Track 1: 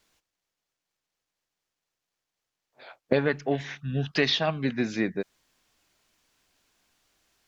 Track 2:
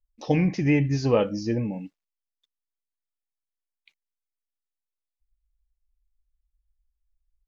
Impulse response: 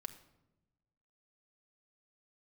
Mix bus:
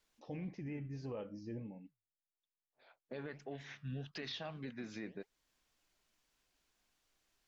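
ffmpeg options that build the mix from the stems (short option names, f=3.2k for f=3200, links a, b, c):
-filter_complex "[0:a]alimiter=limit=-17.5dB:level=0:latency=1:release=18,volume=-5.5dB[a];[1:a]lowpass=f=2.4k:p=1,alimiter=limit=-18dB:level=0:latency=1,volume=-13dB,asplit=2[b][c];[c]apad=whole_len=329735[d];[a][d]sidechaincompress=threshold=-58dB:ratio=12:attack=16:release=1360[e];[e][b]amix=inputs=2:normalize=0,flanger=delay=1.9:depth=8.2:regen=83:speed=1.7:shape=sinusoidal,alimiter=level_in=11dB:limit=-24dB:level=0:latency=1:release=294,volume=-11dB"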